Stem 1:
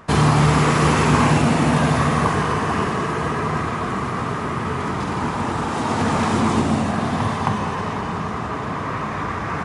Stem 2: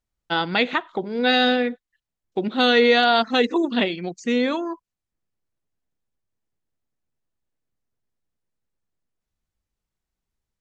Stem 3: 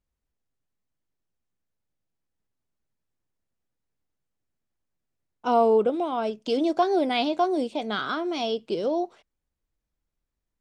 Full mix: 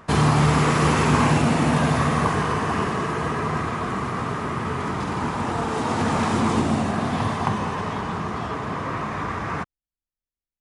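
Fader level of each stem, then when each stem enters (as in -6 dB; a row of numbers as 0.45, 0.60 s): -2.5 dB, off, -14.5 dB; 0.00 s, off, 0.00 s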